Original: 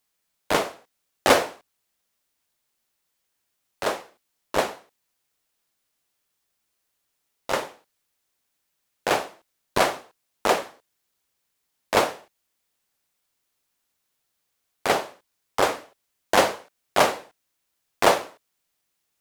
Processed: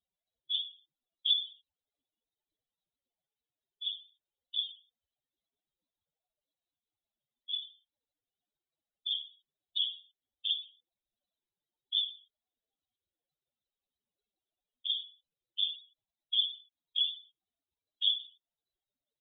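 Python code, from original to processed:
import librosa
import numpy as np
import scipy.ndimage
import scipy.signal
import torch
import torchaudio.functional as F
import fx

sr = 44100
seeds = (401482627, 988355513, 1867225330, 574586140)

y = fx.spec_expand(x, sr, power=4.0)
y = fx.freq_invert(y, sr, carrier_hz=4000)
y = fx.band_shelf(y, sr, hz=1600.0, db=-14.5, octaves=1.7)
y = y * 10.0 ** (-8.5 / 20.0)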